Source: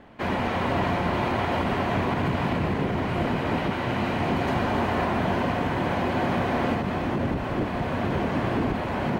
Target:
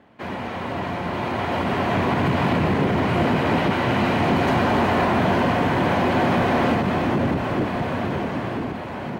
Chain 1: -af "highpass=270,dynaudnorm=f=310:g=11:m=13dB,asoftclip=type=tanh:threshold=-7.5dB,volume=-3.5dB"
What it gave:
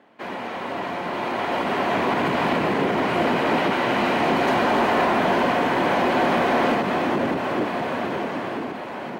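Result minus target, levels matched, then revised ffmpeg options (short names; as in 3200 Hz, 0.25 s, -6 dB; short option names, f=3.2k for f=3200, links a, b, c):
125 Hz band -9.0 dB
-af "highpass=81,dynaudnorm=f=310:g=11:m=13dB,asoftclip=type=tanh:threshold=-7.5dB,volume=-3.5dB"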